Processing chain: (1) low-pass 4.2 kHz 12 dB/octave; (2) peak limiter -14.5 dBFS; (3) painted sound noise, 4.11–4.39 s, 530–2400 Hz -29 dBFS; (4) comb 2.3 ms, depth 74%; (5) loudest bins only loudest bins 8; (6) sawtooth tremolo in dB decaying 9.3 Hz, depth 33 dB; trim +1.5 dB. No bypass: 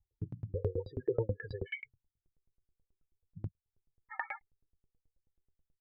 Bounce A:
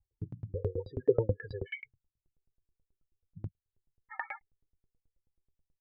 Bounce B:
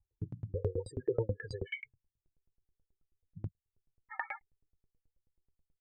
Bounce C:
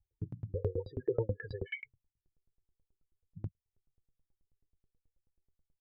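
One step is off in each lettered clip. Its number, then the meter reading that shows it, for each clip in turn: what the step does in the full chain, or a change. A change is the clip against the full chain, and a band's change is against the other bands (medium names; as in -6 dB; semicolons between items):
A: 2, crest factor change +2.0 dB; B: 1, 4 kHz band +3.0 dB; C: 3, 1 kHz band -11.5 dB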